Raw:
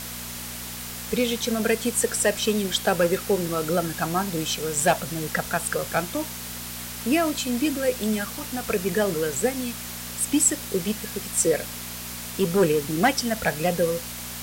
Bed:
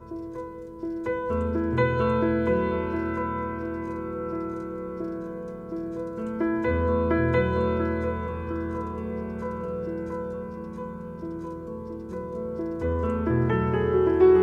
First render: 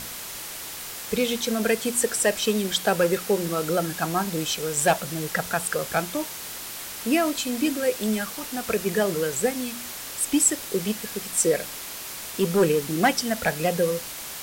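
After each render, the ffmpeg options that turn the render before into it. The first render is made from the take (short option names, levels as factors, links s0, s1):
-af "bandreject=f=60:t=h:w=4,bandreject=f=120:t=h:w=4,bandreject=f=180:t=h:w=4,bandreject=f=240:t=h:w=4"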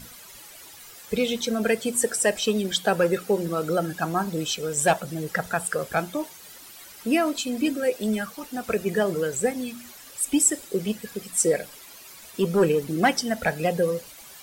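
-af "afftdn=nr=13:nf=-36"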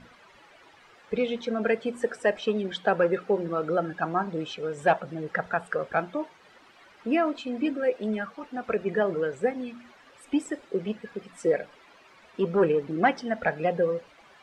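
-af "lowpass=2000,lowshelf=f=180:g=-10.5"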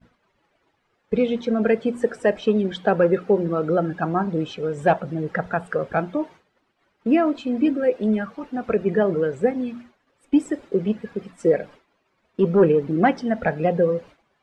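-af "agate=range=0.0224:threshold=0.00708:ratio=3:detection=peak,lowshelf=f=480:g=11"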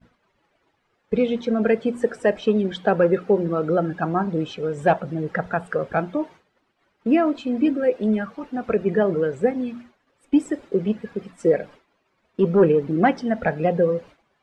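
-af anull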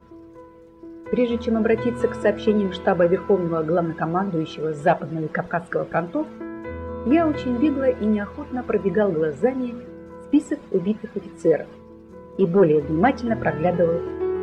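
-filter_complex "[1:a]volume=0.398[s0];[0:a][s0]amix=inputs=2:normalize=0"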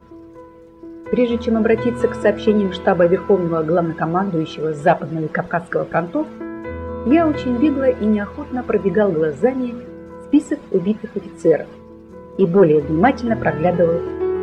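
-af "volume=1.58"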